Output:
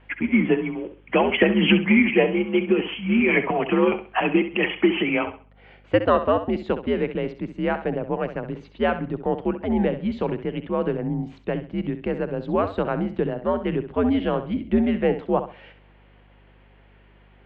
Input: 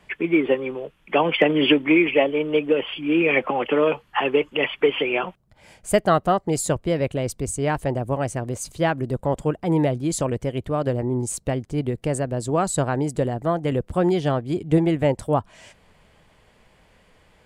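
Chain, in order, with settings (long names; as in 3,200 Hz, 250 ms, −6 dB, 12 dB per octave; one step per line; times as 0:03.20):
single-sideband voice off tune −99 Hz 230–3,400 Hz
flutter between parallel walls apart 11.3 metres, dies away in 0.36 s
mains hum 50 Hz, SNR 31 dB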